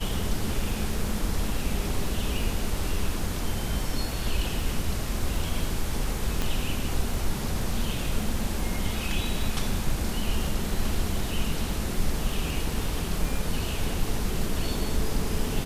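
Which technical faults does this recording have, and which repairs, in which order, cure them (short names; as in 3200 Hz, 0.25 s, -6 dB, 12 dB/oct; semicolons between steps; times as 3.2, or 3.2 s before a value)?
crackle 23/s -33 dBFS
6.42 pop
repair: de-click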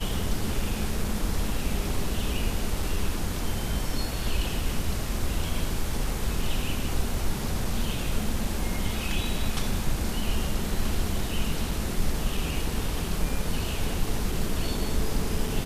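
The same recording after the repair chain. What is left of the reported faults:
6.42 pop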